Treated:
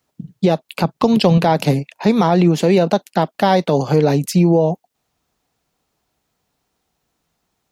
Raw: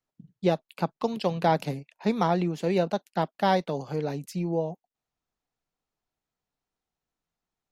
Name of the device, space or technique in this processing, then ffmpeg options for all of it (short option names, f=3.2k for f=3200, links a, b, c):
mastering chain: -filter_complex "[0:a]highpass=45,equalizer=f=1.6k:t=o:w=1.5:g=-2,acompressor=threshold=-27dB:ratio=2,alimiter=level_in=21.5dB:limit=-1dB:release=50:level=0:latency=1,asettb=1/sr,asplit=3[a][b][c];[a]atrim=end=0.844[d];[b]atrim=start=0.84:end=1.38,asetpts=PTS-STARTPTS,afade=t=in:d=0.004:c=qsin,afade=t=out:st=0.536:d=0.004:c=qsin,lowshelf=f=170:g=10[e];[c]atrim=start=1.376[f];[d][e]acrossfade=d=0.004:c1=hsin:c2=qsin[g];[g][f]acrossfade=d=0.004:c1=qsin:c2=hsin,volume=-3.5dB"